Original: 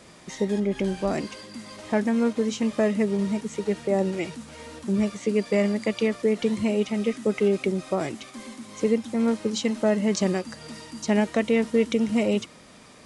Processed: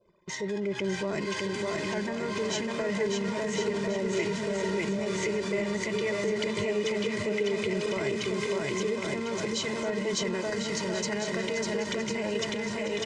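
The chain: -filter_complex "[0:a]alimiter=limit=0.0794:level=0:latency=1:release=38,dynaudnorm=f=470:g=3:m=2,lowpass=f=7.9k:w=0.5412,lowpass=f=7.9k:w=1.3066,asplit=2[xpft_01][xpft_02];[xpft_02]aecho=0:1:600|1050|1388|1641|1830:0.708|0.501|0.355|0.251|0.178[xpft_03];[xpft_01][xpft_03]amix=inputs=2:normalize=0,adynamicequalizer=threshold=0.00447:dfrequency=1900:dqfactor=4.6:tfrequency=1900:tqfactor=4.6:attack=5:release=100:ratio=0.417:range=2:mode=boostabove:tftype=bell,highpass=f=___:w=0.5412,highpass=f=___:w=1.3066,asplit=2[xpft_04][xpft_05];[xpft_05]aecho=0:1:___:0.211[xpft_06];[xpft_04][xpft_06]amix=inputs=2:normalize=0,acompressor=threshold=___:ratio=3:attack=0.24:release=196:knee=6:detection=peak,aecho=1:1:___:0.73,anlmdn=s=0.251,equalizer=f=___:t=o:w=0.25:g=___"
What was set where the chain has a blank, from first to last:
98, 98, 1077, 0.0708, 2, 510, -12.5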